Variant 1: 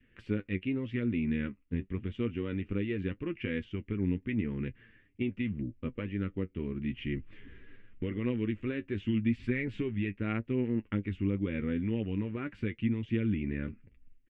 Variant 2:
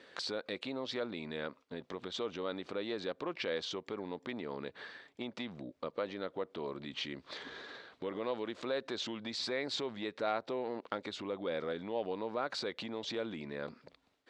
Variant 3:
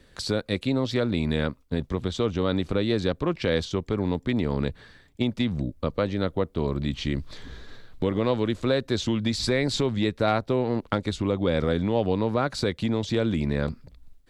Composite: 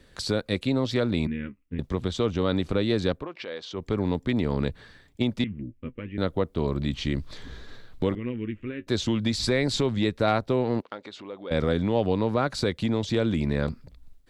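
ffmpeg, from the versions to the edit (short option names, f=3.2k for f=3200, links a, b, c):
-filter_complex "[0:a]asplit=3[a][b][c];[1:a]asplit=2[d][e];[2:a]asplit=6[f][g][h][i][j][k];[f]atrim=end=1.272[l];[a]atrim=start=1.268:end=1.792[m];[g]atrim=start=1.788:end=3.28[n];[d]atrim=start=3.12:end=3.87[o];[h]atrim=start=3.71:end=5.442[p];[b]atrim=start=5.438:end=6.182[q];[i]atrim=start=6.178:end=8.152[r];[c]atrim=start=8.148:end=8.872[s];[j]atrim=start=8.868:end=10.822[t];[e]atrim=start=10.818:end=11.512[u];[k]atrim=start=11.508[v];[l][m]acrossfade=d=0.004:c1=hsin:c2=hsin[w];[w][n]acrossfade=d=0.004:c1=hsin:c2=hsin[x];[x][o]acrossfade=d=0.16:c1=tri:c2=tri[y];[y][p]acrossfade=d=0.16:c1=tri:c2=tri[z];[z][q]acrossfade=d=0.004:c1=hsin:c2=hsin[aa];[aa][r]acrossfade=d=0.004:c1=hsin:c2=hsin[ab];[ab][s]acrossfade=d=0.004:c1=hsin:c2=hsin[ac];[ac][t]acrossfade=d=0.004:c1=hsin:c2=hsin[ad];[ad][u]acrossfade=d=0.004:c1=hsin:c2=hsin[ae];[ae][v]acrossfade=d=0.004:c1=hsin:c2=hsin"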